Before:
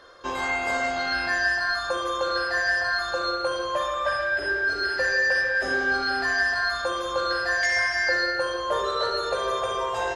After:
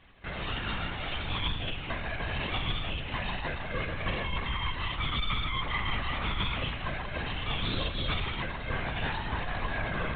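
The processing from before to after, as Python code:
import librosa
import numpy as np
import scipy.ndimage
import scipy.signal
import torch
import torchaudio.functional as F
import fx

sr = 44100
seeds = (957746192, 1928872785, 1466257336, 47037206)

y = fx.echo_bbd(x, sr, ms=308, stages=2048, feedback_pct=63, wet_db=-4.5)
y = np.abs(y)
y = fx.lpc_vocoder(y, sr, seeds[0], excitation='whisper', order=16)
y = y * librosa.db_to_amplitude(-7.0)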